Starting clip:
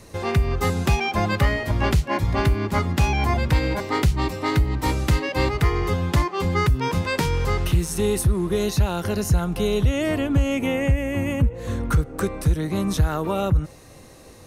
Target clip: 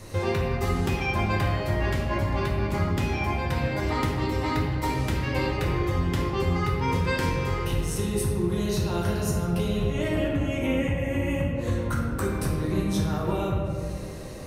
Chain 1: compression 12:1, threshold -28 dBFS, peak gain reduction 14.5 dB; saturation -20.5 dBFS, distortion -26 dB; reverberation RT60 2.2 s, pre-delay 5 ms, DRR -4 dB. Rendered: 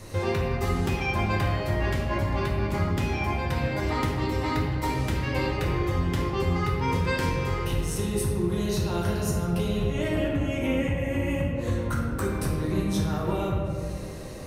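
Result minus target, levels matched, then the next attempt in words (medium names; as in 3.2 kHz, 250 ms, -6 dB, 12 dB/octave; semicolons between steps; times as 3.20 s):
saturation: distortion +14 dB
compression 12:1, threshold -28 dBFS, peak gain reduction 14.5 dB; saturation -13 dBFS, distortion -40 dB; reverberation RT60 2.2 s, pre-delay 5 ms, DRR -4 dB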